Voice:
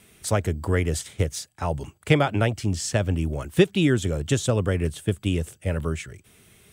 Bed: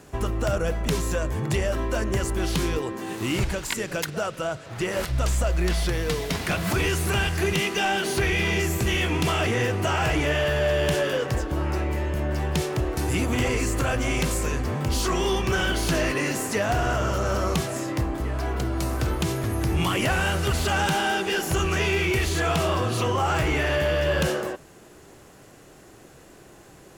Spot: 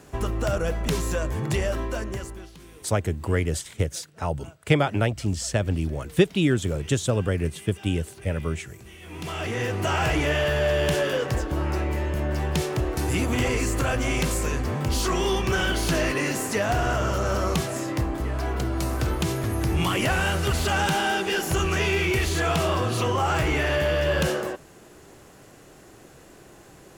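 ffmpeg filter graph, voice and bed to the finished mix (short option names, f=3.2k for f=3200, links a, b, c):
-filter_complex "[0:a]adelay=2600,volume=-1dB[a];[1:a]volume=22dB,afade=t=out:st=1.67:d=0.84:silence=0.0794328,afade=t=in:st=9.01:d=0.94:silence=0.0749894[b];[a][b]amix=inputs=2:normalize=0"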